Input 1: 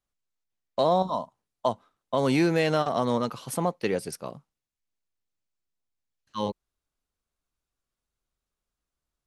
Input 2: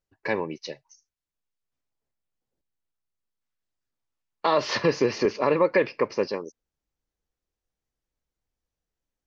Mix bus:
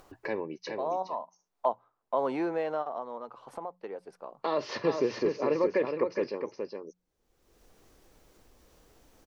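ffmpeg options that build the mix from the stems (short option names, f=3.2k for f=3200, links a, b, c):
-filter_complex "[0:a]bandpass=f=910:t=q:w=1.7:csg=0,volume=-2dB,afade=t=out:st=2.42:d=0.67:silence=0.266073[a];[1:a]volume=-11.5dB,asplit=3[b][c][d];[c]volume=-6dB[e];[d]apad=whole_len=408414[f];[a][f]sidechaincompress=threshold=-44dB:ratio=4:attack=6:release=1180[g];[e]aecho=0:1:415:1[h];[g][b][h]amix=inputs=3:normalize=0,equalizer=f=380:w=0.76:g=7,bandreject=f=60:t=h:w=6,bandreject=f=120:t=h:w=6,bandreject=f=180:t=h:w=6,acompressor=mode=upward:threshold=-32dB:ratio=2.5"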